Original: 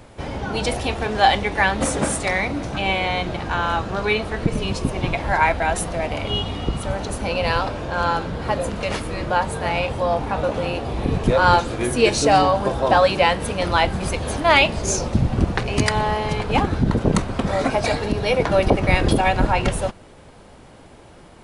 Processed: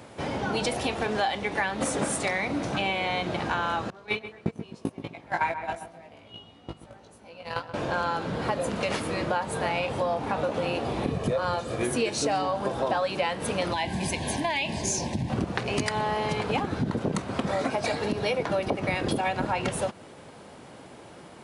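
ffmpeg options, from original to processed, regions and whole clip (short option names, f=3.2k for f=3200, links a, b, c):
-filter_complex "[0:a]asettb=1/sr,asplit=3[a][b][c];[a]atrim=end=3.904[d];[b]atrim=start=3.9:end=7.74,asetpts=PTS-STARTPTS,afade=t=in:d=0.004:c=qsin,afade=t=out:st=3.836:d=0.004:c=qsin,agate=range=-26dB:threshold=-18dB:ratio=16:release=100:detection=peak,asplit=2[e][f];[f]adelay=18,volume=-2.5dB[g];[e][g]amix=inputs=2:normalize=0,atrim=end_sample=169344,asplit=2[h][i];[i]adelay=129,lowpass=f=1.7k:p=1,volume=-12dB,asplit=2[j][k];[k]adelay=129,lowpass=f=1.7k:p=1,volume=0.3,asplit=2[l][m];[m]adelay=129,lowpass=f=1.7k:p=1,volume=0.3[n];[h][j][l][n]amix=inputs=4:normalize=0,atrim=end_sample=169344[o];[c]atrim=start=7.736[p];[d][o]acrossfade=d=0.004:c1=hsin:c2=qsin[q];[q][p]acrossfade=d=0.004:c1=qsin:c2=hsin,asettb=1/sr,asplit=3[r][s][t];[r]atrim=end=11.124[u];[s]atrim=start=11.12:end=11.83,asetpts=PTS-STARTPTS,afade=t=in:d=0.004:c=qsin,afade=t=out:st=0.706:d=0.004:c=qsin,equalizer=f=2.5k:w=0.32:g=-4,aecho=1:1:1.7:0.4,atrim=end_sample=31311[v];[t]atrim=start=11.826[w];[u][v]acrossfade=d=0.004:c1=hsin:c2=qsin[x];[x][w]acrossfade=d=0.004:c1=qsin:c2=hsin,asettb=1/sr,asplit=3[y][z][aa];[y]atrim=end=13.734[ab];[z]atrim=start=13.73:end=15.3,asetpts=PTS-STARTPTS,afade=t=in:d=0.004:c=qsin,afade=t=out:st=1.566:d=0.004:c=qsin,equalizer=f=490:w=2.2:g=-9,acompressor=threshold=-19dB:ratio=4:attack=3.2:release=140:knee=1:detection=peak,asuperstop=centerf=1300:order=8:qfactor=2.7[ac];[aa]atrim=start=15.296[ad];[ab][ac]acrossfade=d=0.004:c1=hsin:c2=qsin[ae];[ae][ad]acrossfade=d=0.004:c1=qsin:c2=hsin,highpass=130,acompressor=threshold=-24dB:ratio=6"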